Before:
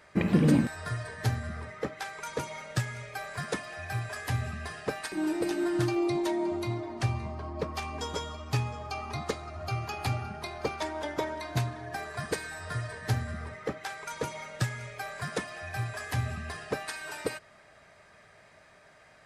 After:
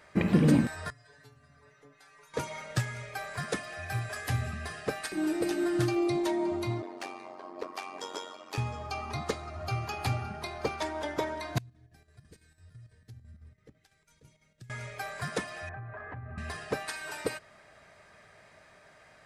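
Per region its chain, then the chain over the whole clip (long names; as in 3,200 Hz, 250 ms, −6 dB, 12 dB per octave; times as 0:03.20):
0:00.90–0:02.34: downward compressor 10 to 1, threshold −38 dBFS + stiff-string resonator 140 Hz, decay 0.37 s, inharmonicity 0.002
0:03.50–0:06.23: high-shelf EQ 11,000 Hz +4 dB + notch filter 950 Hz, Q 7.9
0:06.82–0:08.58: Butterworth high-pass 270 Hz 48 dB per octave + hard clipping −24 dBFS + amplitude modulation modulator 92 Hz, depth 65%
0:11.58–0:14.70: guitar amp tone stack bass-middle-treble 10-0-1 + downward compressor 3 to 1, threshold −47 dBFS + square-wave tremolo 6 Hz, depth 60%, duty 70%
0:15.69–0:16.38: low-pass filter 1,700 Hz 24 dB per octave + downward compressor 10 to 1, threshold −38 dBFS
whole clip: no processing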